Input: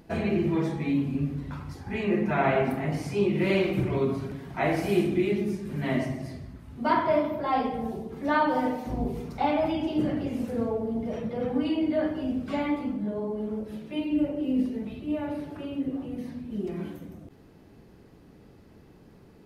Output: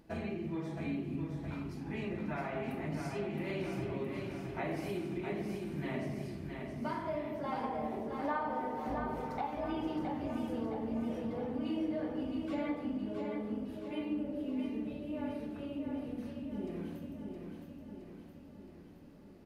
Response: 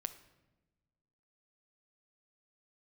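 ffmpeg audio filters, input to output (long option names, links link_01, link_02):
-filter_complex "[0:a]asettb=1/sr,asplit=3[link_01][link_02][link_03];[link_01]atrim=end=7.634[link_04];[link_02]atrim=start=7.63:end=9.47,asetpts=PTS-STARTPTS,afade=type=in:duration=0.004:curve=qsin,afade=type=out:start_time=1.836:duration=0.004:curve=qsin,equalizer=frequency=1000:width=0.6:gain=12[link_05];[link_03]atrim=start=9.466[link_06];[link_04][link_05]acrossfade=duration=0.004:curve1=hsin:curve2=qsin[link_07];[link_07][link_06]acrossfade=duration=0.004:curve1=qsin:curve2=hsin,acompressor=threshold=-27dB:ratio=6,aecho=1:1:667|1334|2001|2668|3335|4002|4669|5336:0.531|0.308|0.179|0.104|0.0601|0.0348|0.0202|0.0117[link_08];[1:a]atrim=start_sample=2205,asetrate=88200,aresample=44100[link_09];[link_08][link_09]afir=irnorm=-1:irlink=0"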